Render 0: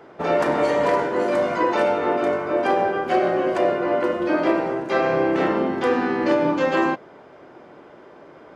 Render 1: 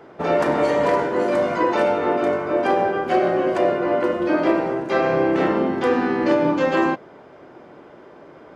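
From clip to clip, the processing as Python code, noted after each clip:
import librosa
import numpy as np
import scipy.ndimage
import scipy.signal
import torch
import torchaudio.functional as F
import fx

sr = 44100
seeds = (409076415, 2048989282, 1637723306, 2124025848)

y = fx.low_shelf(x, sr, hz=370.0, db=3.0)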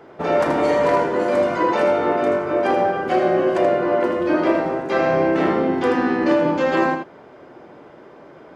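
y = x + 10.0 ** (-6.5 / 20.0) * np.pad(x, (int(80 * sr / 1000.0), 0))[:len(x)]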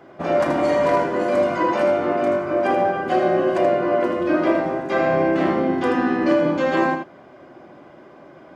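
y = fx.notch_comb(x, sr, f0_hz=450.0)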